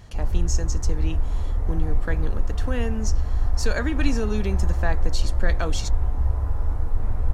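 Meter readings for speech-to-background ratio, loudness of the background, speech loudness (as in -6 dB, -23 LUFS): -3.5 dB, -27.5 LUFS, -31.0 LUFS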